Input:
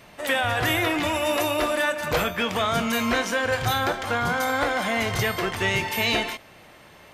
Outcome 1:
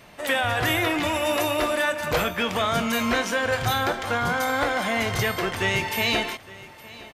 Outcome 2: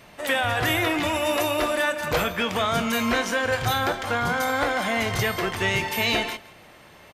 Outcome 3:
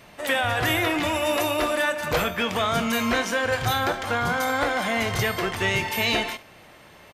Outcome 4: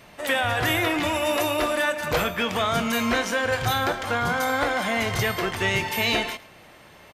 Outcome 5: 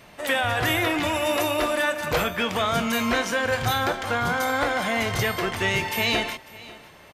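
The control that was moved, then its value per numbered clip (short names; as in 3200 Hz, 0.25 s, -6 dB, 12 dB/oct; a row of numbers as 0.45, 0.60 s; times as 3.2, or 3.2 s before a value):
echo, time: 864, 164, 70, 108, 547 ms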